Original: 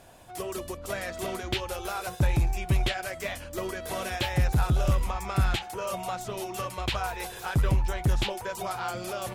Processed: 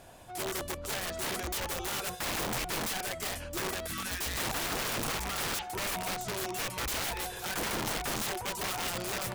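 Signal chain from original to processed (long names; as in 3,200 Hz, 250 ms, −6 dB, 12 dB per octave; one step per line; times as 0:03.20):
time-frequency box erased 0:03.87–0:04.42, 350–1,100 Hz
wrap-around overflow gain 28.5 dB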